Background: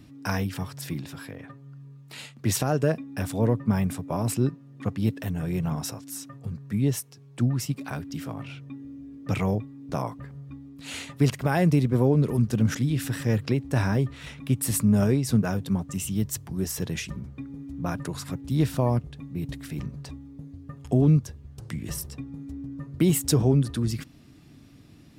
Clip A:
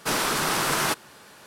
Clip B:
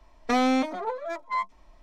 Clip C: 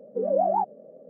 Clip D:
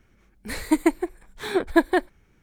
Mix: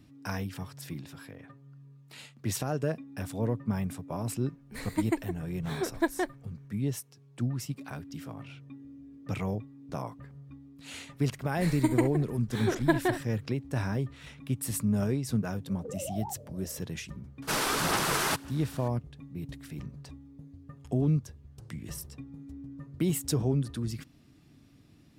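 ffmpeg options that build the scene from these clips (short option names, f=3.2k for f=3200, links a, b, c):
-filter_complex "[4:a]asplit=2[a][b];[0:a]volume=-7dB[c];[b]aecho=1:1:45|67:0.188|0.237[d];[3:a]acompressor=threshold=-33dB:ratio=6:attack=3.2:release=140:knee=1:detection=peak[e];[1:a]aphaser=in_gain=1:out_gain=1:delay=2.6:decay=0.3:speed=1.9:type=sinusoidal[f];[a]atrim=end=2.42,asetpts=PTS-STARTPTS,volume=-9.5dB,afade=t=in:d=0.004:c=hsin,afade=t=out:st=2.416:d=0.004:c=hsin,adelay=4260[g];[d]atrim=end=2.42,asetpts=PTS-STARTPTS,volume=-7dB,afade=t=in:d=0.004:c=hsin,afade=t=out:st=2.416:d=0.004:c=hsin,adelay=11120[h];[e]atrim=end=1.09,asetpts=PTS-STARTPTS,volume=-4.5dB,afade=t=in:d=0.004:c=hsin,afade=t=out:st=1.086:d=0.004:c=hsin,adelay=15690[i];[f]atrim=end=1.46,asetpts=PTS-STARTPTS,volume=-4.5dB,afade=t=in:d=0.004:c=hsin,afade=t=out:st=1.456:d=0.004:c=hsin,adelay=17420[j];[c][g][h][i][j]amix=inputs=5:normalize=0"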